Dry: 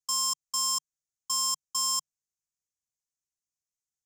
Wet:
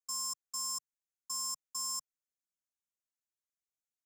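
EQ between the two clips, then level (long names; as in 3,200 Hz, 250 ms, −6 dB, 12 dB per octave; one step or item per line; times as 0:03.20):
phaser with its sweep stopped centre 600 Hz, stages 8
−6.5 dB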